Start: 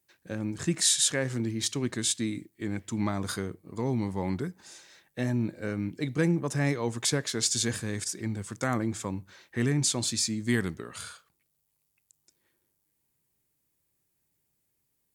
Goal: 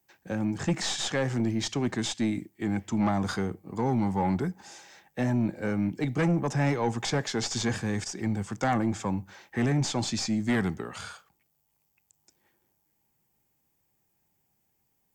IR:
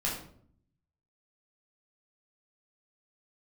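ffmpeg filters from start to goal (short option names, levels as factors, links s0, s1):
-filter_complex "[0:a]aeval=exprs='0.282*(cos(1*acos(clip(val(0)/0.282,-1,1)))-cos(1*PI/2))+0.02*(cos(4*acos(clip(val(0)/0.282,-1,1)))-cos(4*PI/2))':c=same,acrossover=split=100|470|4000[s0][s1][s2][s3];[s3]alimiter=limit=0.0794:level=0:latency=1[s4];[s0][s1][s2][s4]amix=inputs=4:normalize=0,equalizer=f=200:t=o:w=0.33:g=4,equalizer=f=800:t=o:w=0.33:g=11,equalizer=f=4000:t=o:w=0.33:g=-6,equalizer=f=10000:t=o:w=0.33:g=-10,aeval=exprs='0.224*sin(PI/2*2*val(0)/0.224)':c=same,acrossover=split=7000[s5][s6];[s6]acompressor=threshold=0.00355:ratio=4:attack=1:release=60[s7];[s5][s7]amix=inputs=2:normalize=0,volume=0.473"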